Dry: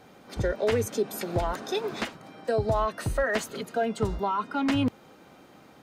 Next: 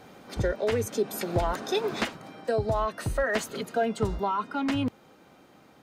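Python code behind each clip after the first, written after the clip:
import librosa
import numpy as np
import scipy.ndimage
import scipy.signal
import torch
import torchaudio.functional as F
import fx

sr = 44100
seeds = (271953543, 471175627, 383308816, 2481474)

y = fx.rider(x, sr, range_db=3, speed_s=0.5)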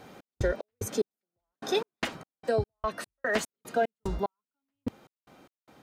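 y = fx.step_gate(x, sr, bpm=74, pattern='x.x.x...x.x.x.x.', floor_db=-60.0, edge_ms=4.5)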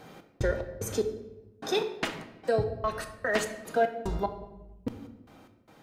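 y = fx.room_shoebox(x, sr, seeds[0], volume_m3=460.0, walls='mixed', distance_m=0.6)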